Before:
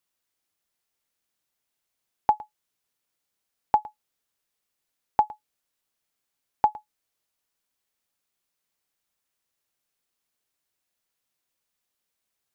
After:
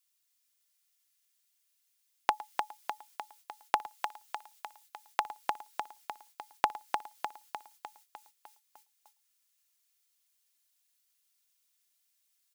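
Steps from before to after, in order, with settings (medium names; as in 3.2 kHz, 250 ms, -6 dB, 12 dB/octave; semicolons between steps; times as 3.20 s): treble shelf 2.4 kHz +9.5 dB; comb 2.9 ms, depth 41%; compression 10:1, threshold -22 dBFS, peak gain reduction 7.5 dB; tilt shelf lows -7.5 dB, about 780 Hz; feedback delay 302 ms, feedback 59%, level -5 dB; gate -60 dBFS, range -12 dB; high-pass 330 Hz 6 dB/octave, from 3.86 s 890 Hz, from 5.25 s 180 Hz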